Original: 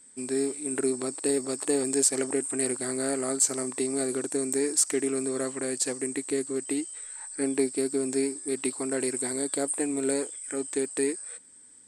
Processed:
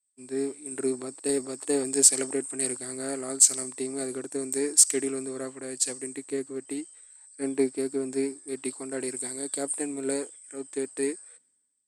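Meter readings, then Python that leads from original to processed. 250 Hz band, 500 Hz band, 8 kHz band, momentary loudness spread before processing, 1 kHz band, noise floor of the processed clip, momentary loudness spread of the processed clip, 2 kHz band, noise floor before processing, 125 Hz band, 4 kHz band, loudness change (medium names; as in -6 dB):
-2.5 dB, -2.0 dB, +2.5 dB, 8 LU, -3.5 dB, -69 dBFS, 16 LU, -3.0 dB, -52 dBFS, -3.0 dB, +2.0 dB, +1.0 dB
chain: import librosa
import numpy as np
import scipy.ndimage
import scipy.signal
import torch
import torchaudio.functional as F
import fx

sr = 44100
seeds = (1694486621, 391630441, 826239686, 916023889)

y = fx.band_widen(x, sr, depth_pct=100)
y = y * librosa.db_to_amplitude(-2.5)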